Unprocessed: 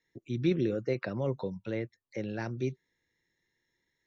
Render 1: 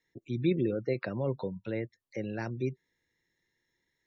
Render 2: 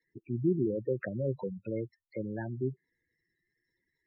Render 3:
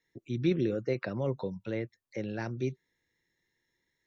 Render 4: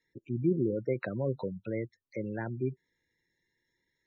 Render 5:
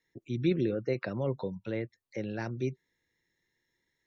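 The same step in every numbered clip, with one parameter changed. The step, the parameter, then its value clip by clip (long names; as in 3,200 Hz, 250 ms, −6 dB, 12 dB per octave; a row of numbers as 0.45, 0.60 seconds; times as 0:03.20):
gate on every frequency bin, under each frame's peak: −35, −10, −60, −20, −45 decibels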